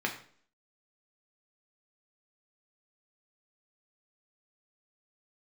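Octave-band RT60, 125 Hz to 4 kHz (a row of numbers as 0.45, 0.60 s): 0.50, 0.60, 0.55, 0.50, 0.45, 0.45 s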